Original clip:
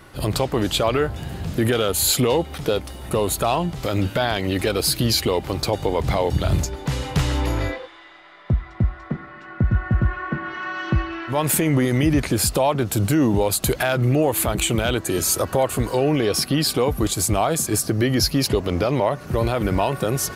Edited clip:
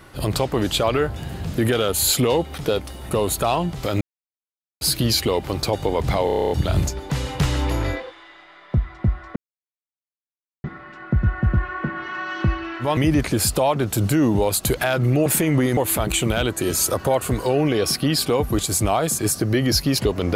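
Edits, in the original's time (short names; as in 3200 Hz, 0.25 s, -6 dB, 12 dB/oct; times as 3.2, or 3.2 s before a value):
4.01–4.81 mute
6.26 stutter 0.03 s, 9 plays
9.12 insert silence 1.28 s
11.45–11.96 move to 14.25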